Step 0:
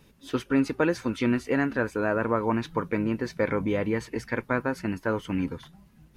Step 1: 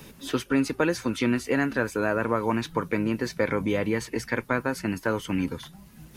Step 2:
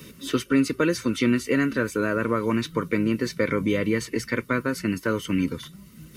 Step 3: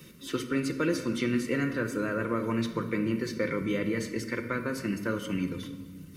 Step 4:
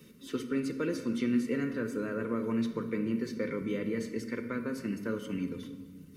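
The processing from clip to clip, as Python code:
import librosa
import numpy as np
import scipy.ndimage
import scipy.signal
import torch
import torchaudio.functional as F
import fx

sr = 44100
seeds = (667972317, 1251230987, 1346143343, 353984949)

y1 = fx.high_shelf(x, sr, hz=4000.0, db=10.5)
y1 = fx.band_squash(y1, sr, depth_pct=40)
y2 = fx.peak_eq(y1, sr, hz=770.0, db=-14.5, octaves=0.57)
y2 = fx.notch_comb(y2, sr, f0_hz=830.0)
y2 = y2 * 10.0 ** (4.0 / 20.0)
y3 = fx.room_shoebox(y2, sr, seeds[0], volume_m3=1400.0, walls='mixed', distance_m=0.87)
y3 = y3 * 10.0 ** (-7.0 / 20.0)
y4 = fx.small_body(y3, sr, hz=(240.0, 430.0), ring_ms=50, db=9)
y4 = y4 * 10.0 ** (-7.5 / 20.0)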